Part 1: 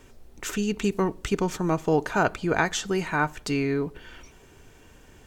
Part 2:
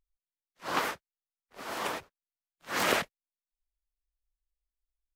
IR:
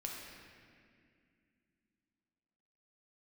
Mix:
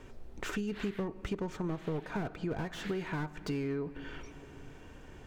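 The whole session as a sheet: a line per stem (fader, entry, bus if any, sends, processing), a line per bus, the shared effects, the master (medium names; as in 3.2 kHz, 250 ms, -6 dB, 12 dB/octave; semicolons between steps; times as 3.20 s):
+0.5 dB, 0.00 s, send -15 dB, low-pass 2.4 kHz 6 dB/octave; slew-rate limiter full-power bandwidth 46 Hz
-7.0 dB, 0.10 s, no send, high-order bell 2.5 kHz +14 dB; compression, threshold -26 dBFS, peak gain reduction 12.5 dB; auto duck -9 dB, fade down 1.75 s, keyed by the first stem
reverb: on, RT60 2.2 s, pre-delay 5 ms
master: compression 4:1, threshold -34 dBFS, peak gain reduction 15 dB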